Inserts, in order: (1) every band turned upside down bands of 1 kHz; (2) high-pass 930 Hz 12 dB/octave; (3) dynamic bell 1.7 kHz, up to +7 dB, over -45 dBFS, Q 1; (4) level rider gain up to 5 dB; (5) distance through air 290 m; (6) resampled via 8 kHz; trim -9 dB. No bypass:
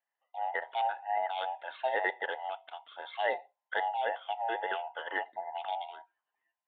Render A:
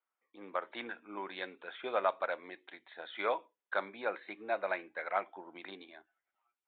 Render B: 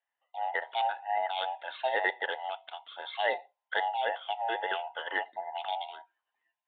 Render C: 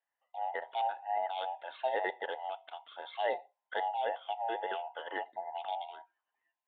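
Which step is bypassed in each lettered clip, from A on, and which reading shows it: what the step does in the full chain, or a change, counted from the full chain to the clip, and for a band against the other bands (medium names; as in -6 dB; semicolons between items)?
1, 250 Hz band +10.5 dB; 5, 4 kHz band +5.0 dB; 3, 2 kHz band -5.0 dB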